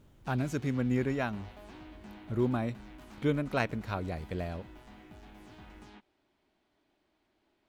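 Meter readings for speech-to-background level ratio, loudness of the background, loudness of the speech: 18.5 dB, −52.0 LKFS, −33.5 LKFS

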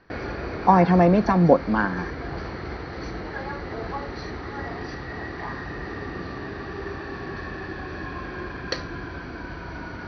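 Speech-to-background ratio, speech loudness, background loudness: 14.5 dB, −19.0 LKFS, −33.5 LKFS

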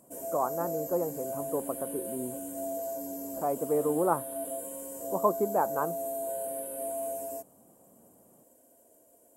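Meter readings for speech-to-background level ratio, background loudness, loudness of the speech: 4.5 dB, −36.5 LKFS, −32.0 LKFS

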